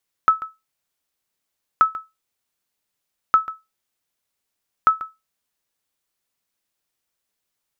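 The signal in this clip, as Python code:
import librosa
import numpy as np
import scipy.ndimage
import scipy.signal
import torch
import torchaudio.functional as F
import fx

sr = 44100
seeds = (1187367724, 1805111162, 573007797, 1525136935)

y = fx.sonar_ping(sr, hz=1300.0, decay_s=0.21, every_s=1.53, pings=4, echo_s=0.14, echo_db=-16.5, level_db=-5.5)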